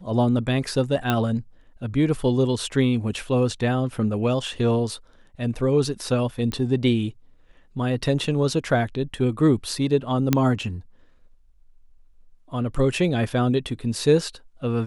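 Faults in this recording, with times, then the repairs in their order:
0:01.10: click −9 dBFS
0:06.52: click −15 dBFS
0:10.33: click −4 dBFS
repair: click removal

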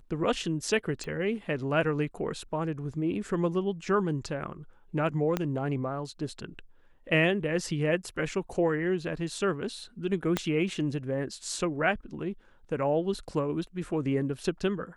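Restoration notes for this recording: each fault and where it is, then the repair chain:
0:01.04: click −25 dBFS
0:05.37: click −14 dBFS
0:10.37: click −12 dBFS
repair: click removal

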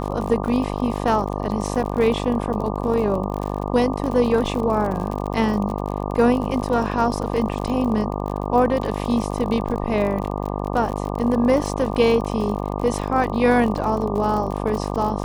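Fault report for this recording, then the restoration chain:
mains buzz 50 Hz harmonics 24 −26 dBFS
surface crackle 51 per second −27 dBFS
0:00.77–0:00.78: drop-out 6.5 ms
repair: click removal
hum removal 50 Hz, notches 24
repair the gap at 0:00.77, 6.5 ms

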